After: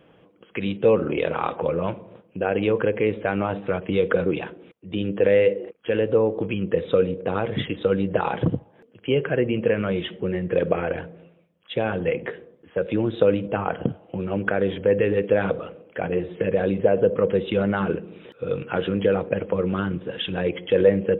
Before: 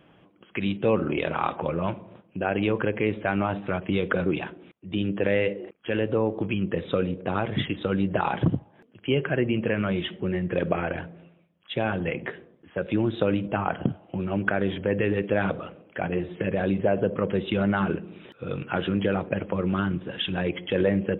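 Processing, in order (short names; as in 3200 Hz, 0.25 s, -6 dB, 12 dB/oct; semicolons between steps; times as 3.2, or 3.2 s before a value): bell 480 Hz +10 dB 0.32 oct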